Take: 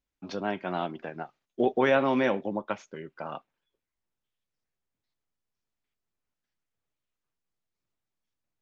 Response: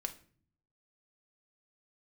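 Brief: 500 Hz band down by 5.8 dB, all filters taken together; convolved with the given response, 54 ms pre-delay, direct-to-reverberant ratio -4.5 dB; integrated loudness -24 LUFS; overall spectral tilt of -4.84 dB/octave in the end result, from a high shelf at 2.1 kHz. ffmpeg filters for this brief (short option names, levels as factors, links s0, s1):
-filter_complex "[0:a]equalizer=f=500:t=o:g=-7,highshelf=f=2100:g=-5,asplit=2[s0][s1];[1:a]atrim=start_sample=2205,adelay=54[s2];[s1][s2]afir=irnorm=-1:irlink=0,volume=1.78[s3];[s0][s3]amix=inputs=2:normalize=0,volume=1.41"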